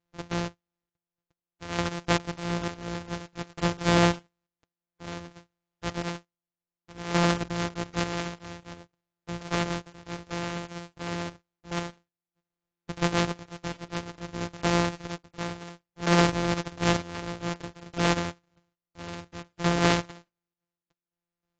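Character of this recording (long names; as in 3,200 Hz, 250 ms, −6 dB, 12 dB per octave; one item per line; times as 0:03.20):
a buzz of ramps at a fixed pitch in blocks of 256 samples
chopped level 0.56 Hz, depth 60%, duty 50%
AAC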